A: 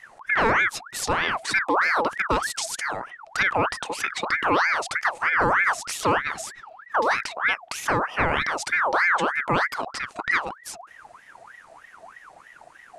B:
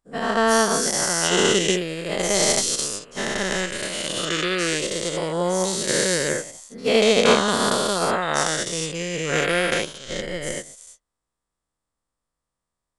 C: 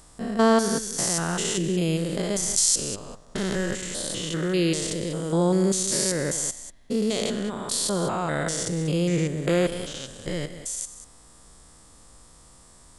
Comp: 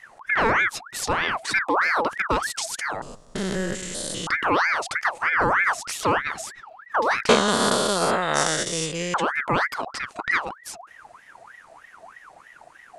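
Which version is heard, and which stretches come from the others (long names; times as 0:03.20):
A
0:03.02–0:04.27: punch in from C
0:07.29–0:09.14: punch in from B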